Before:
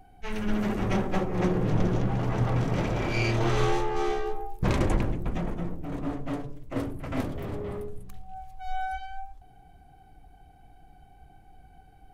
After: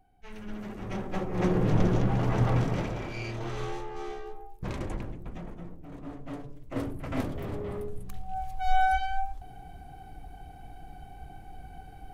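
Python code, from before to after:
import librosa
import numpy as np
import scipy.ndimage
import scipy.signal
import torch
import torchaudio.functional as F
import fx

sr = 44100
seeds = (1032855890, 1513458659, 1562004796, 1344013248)

y = fx.gain(x, sr, db=fx.line((0.75, -11.5), (1.57, 1.0), (2.56, 1.0), (3.17, -10.0), (6.02, -10.0), (6.88, -1.0), (7.73, -1.0), (8.46, 8.0)))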